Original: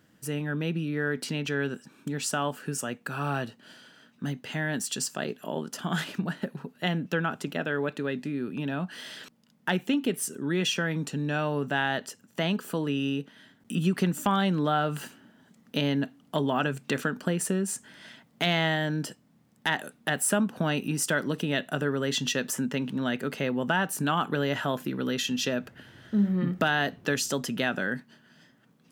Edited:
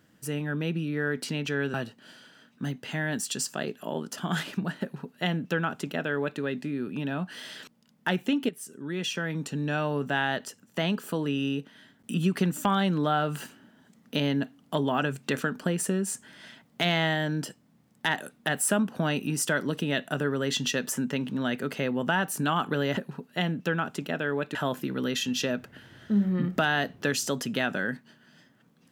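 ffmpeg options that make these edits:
-filter_complex "[0:a]asplit=5[a][b][c][d][e];[a]atrim=end=1.742[f];[b]atrim=start=3.348:end=10.1,asetpts=PTS-STARTPTS,afade=t=out:st=6.748:d=0.004:c=hsin:silence=0.237137[g];[c]atrim=start=10.1:end=24.582,asetpts=PTS-STARTPTS,afade=t=in:d=1.14:silence=0.237137[h];[d]atrim=start=6.428:end=8.012[i];[e]atrim=start=24.578[j];[g][h]concat=n=2:v=0:a=1[k];[f][k]acrossfade=d=0.004:c1=hsin:c2=hsin[l];[l][i]acrossfade=d=0.004:c1=hsin:c2=hsin[m];[m][j]acrossfade=d=0.004:c1=hsin:c2=hsin"

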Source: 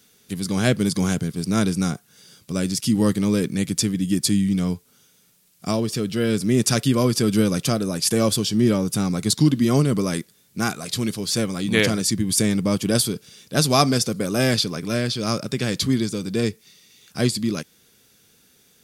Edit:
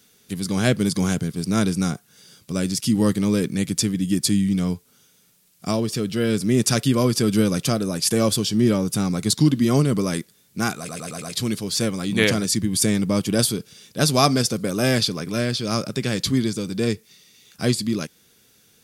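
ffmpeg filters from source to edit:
-filter_complex "[0:a]asplit=5[a][b][c][d][e];[a]atrim=end=10.892[f];[b]atrim=start=10.778:end=10.892[g];[c]atrim=start=10.778:end=10.892[h];[d]atrim=start=10.778:end=10.892[i];[e]atrim=start=10.778[j];[f][g]acrossfade=d=0.004:c1=hsin:c2=hsin[k];[k][h]acrossfade=d=0.004:c1=hsin:c2=hsin[l];[l][i]acrossfade=d=0.004:c1=hsin:c2=hsin[m];[m][j]acrossfade=d=0.004:c1=hsin:c2=hsin"

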